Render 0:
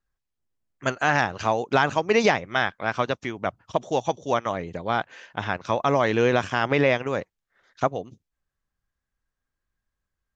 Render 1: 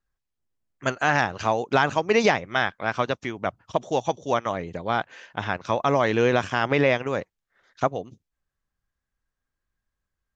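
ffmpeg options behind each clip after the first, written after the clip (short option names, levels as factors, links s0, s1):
-af anull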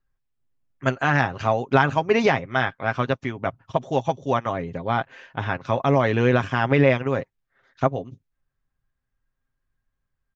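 -af "bass=f=250:g=5,treble=f=4000:g=-9,aecho=1:1:7.5:0.45"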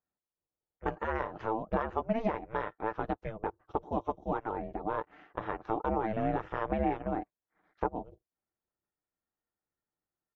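-af "bandpass=f=530:t=q:w=1:csg=0,acompressor=threshold=0.0355:ratio=2,aeval=exprs='val(0)*sin(2*PI*220*n/s)':c=same"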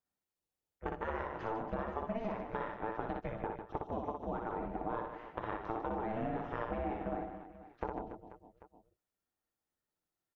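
-af "acompressor=threshold=0.0224:ratio=6,aecho=1:1:60|150|285|487.5|791.2:0.631|0.398|0.251|0.158|0.1,volume=0.841"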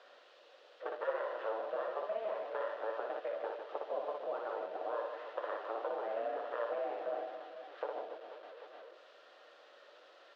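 -af "aeval=exprs='val(0)+0.5*0.00562*sgn(val(0))':c=same,highpass=f=480:w=0.5412,highpass=f=480:w=1.3066,equalizer=f=550:t=q:w=4:g=9,equalizer=f=860:t=q:w=4:g=-8,equalizer=f=2200:t=q:w=4:g=-8,lowpass=f=3600:w=0.5412,lowpass=f=3600:w=1.3066"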